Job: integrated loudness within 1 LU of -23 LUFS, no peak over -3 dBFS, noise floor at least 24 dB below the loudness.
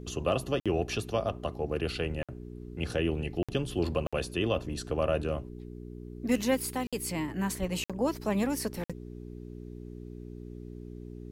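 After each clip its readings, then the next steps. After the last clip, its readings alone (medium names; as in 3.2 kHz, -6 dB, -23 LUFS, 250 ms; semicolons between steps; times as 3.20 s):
dropouts 7; longest dropout 56 ms; hum 60 Hz; highest harmonic 420 Hz; hum level -40 dBFS; loudness -32.0 LUFS; peak level -15.5 dBFS; loudness target -23.0 LUFS
-> interpolate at 0.60/2.23/3.43/4.07/6.87/7.84/8.84 s, 56 ms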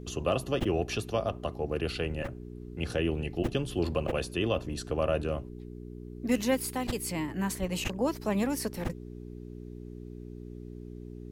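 dropouts 0; hum 60 Hz; highest harmonic 420 Hz; hum level -40 dBFS
-> de-hum 60 Hz, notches 7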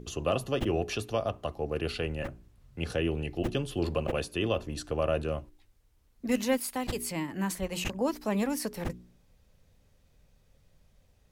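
hum not found; loudness -32.0 LUFS; peak level -16.0 dBFS; loudness target -23.0 LUFS
-> trim +9 dB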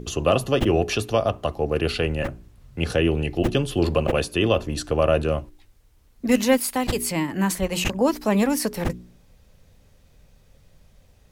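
loudness -23.0 LUFS; peak level -7.0 dBFS; noise floor -57 dBFS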